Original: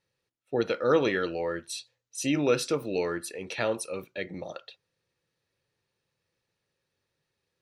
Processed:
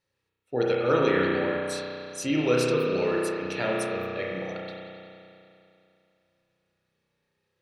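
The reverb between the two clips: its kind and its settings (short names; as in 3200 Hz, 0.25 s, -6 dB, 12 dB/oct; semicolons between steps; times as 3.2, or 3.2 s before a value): spring tank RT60 2.7 s, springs 32 ms, chirp 65 ms, DRR -4 dB; gain -1.5 dB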